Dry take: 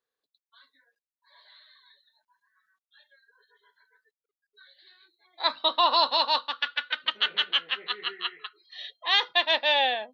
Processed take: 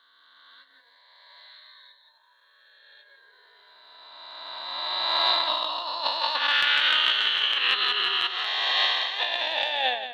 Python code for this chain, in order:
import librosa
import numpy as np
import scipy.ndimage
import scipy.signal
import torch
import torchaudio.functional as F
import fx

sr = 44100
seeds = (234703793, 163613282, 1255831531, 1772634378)

y = fx.spec_swells(x, sr, rise_s=2.67)
y = fx.low_shelf(y, sr, hz=190.0, db=-10.0)
y = fx.transient(y, sr, attack_db=-12, sustain_db=-8)
y = fx.over_compress(y, sr, threshold_db=-24.0, ratio=-0.5)
y = y + 10.0 ** (-10.5 / 20.0) * np.pad(y, (int(174 * sr / 1000.0), 0))[:len(y)]